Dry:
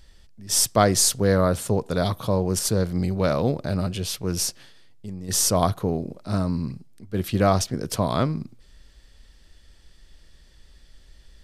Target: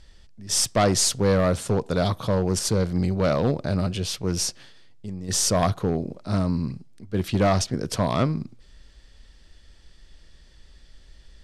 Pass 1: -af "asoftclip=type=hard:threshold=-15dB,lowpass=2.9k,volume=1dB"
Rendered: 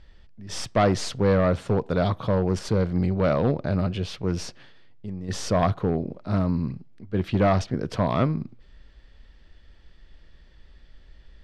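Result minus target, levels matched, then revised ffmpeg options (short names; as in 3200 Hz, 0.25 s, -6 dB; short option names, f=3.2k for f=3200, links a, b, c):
8000 Hz band -13.5 dB
-af "asoftclip=type=hard:threshold=-15dB,lowpass=8.3k,volume=1dB"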